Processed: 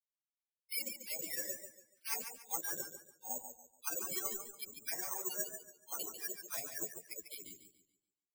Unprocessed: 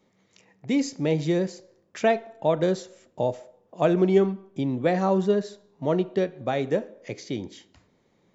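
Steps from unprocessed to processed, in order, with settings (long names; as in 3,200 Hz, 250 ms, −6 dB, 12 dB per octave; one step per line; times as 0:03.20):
spectral dynamics exaggerated over time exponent 3
Chebyshev low-pass filter 3,300 Hz, order 5
gate on every frequency bin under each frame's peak −20 dB weak
parametric band 720 Hz +13.5 dB 2.9 octaves
reversed playback
downward compressor 6 to 1, threshold −55 dBFS, peak gain reduction 24 dB
reversed playback
all-pass dispersion lows, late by 94 ms, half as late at 820 Hz
bad sample-rate conversion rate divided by 6×, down filtered, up zero stuff
feedback echo with a swinging delay time 143 ms, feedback 33%, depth 85 cents, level −8 dB
level +9 dB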